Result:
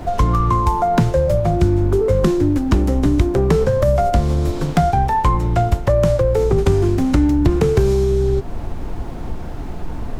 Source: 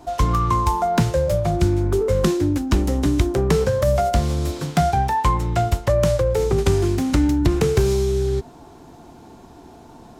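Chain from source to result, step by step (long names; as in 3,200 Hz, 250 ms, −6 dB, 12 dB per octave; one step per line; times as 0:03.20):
background noise brown −31 dBFS
high-shelf EQ 2,000 Hz −8.5 dB
in parallel at +3 dB: downward compressor, threshold −25 dBFS, peak gain reduction 12.5 dB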